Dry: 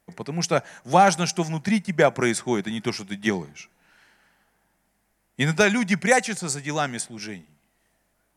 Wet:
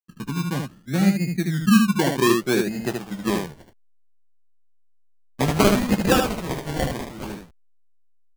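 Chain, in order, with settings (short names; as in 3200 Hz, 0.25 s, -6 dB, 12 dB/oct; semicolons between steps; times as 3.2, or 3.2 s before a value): level-crossing sampler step -39.5 dBFS; gate -41 dBFS, range -13 dB; low-pass sweep 240 Hz -> 4900 Hz, 1.85–4.65; decimation with a swept rate 27×, swing 60% 0.63 Hz; on a send: early reflections 15 ms -8.5 dB, 76 ms -4.5 dB; on the sum: gain -1 dB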